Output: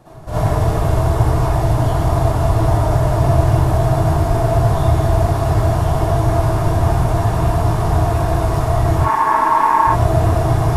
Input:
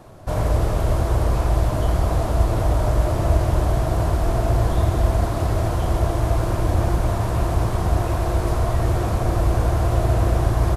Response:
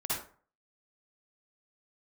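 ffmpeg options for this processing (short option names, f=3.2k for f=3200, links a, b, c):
-filter_complex "[0:a]equalizer=f=120:t=o:w=0.53:g=5,asettb=1/sr,asplit=3[a][b][c];[a]atrim=end=8.994[d];[b]atrim=start=8.99:end=9.87,asetpts=PTS-STARTPTS,afade=t=in:d=0.004:c=qsin,afade=t=out:st=0.876:d=0.004:c=qsin,aeval=exprs='val(0)*sin(2*PI*990*n/s)':c=same[e];[c]atrim=start=9.866[f];[d][e]acrossfade=d=0.004:c1=hsin:c2=qsin[g];[g][f]acrossfade=d=0.004:c1=qsin:c2=hsin[h];[1:a]atrim=start_sample=2205,atrim=end_sample=4410[i];[h][i]afir=irnorm=-1:irlink=0"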